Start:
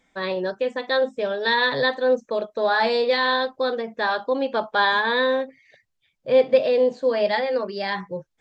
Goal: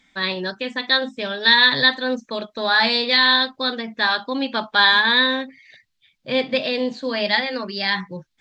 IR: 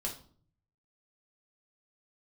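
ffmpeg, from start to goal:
-af "equalizer=frequency=250:width_type=o:width=1:gain=5,equalizer=frequency=500:width_type=o:width=1:gain=-10,equalizer=frequency=2000:width_type=o:width=1:gain=4,equalizer=frequency=4000:width_type=o:width=1:gain=9,volume=2dB"

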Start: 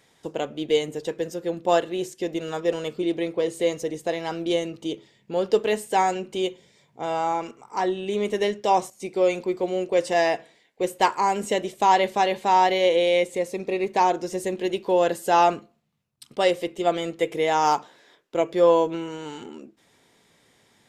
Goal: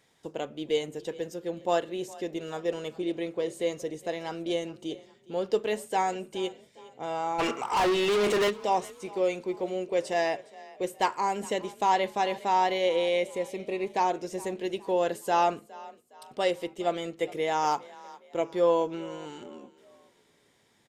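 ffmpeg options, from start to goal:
ffmpeg -i in.wav -filter_complex "[0:a]asplit=3[link_01][link_02][link_03];[link_01]afade=type=out:start_time=7.38:duration=0.02[link_04];[link_02]asplit=2[link_05][link_06];[link_06]highpass=frequency=720:poles=1,volume=33dB,asoftclip=type=tanh:threshold=-12dB[link_07];[link_05][link_07]amix=inputs=2:normalize=0,lowpass=frequency=4200:poles=1,volume=-6dB,afade=type=in:start_time=7.38:duration=0.02,afade=type=out:start_time=8.49:duration=0.02[link_08];[link_03]afade=type=in:start_time=8.49:duration=0.02[link_09];[link_04][link_08][link_09]amix=inputs=3:normalize=0,asplit=2[link_10][link_11];[link_11]asplit=3[link_12][link_13][link_14];[link_12]adelay=413,afreqshift=32,volume=-20.5dB[link_15];[link_13]adelay=826,afreqshift=64,volume=-28dB[link_16];[link_14]adelay=1239,afreqshift=96,volume=-35.6dB[link_17];[link_15][link_16][link_17]amix=inputs=3:normalize=0[link_18];[link_10][link_18]amix=inputs=2:normalize=0,volume=-6dB" out.wav

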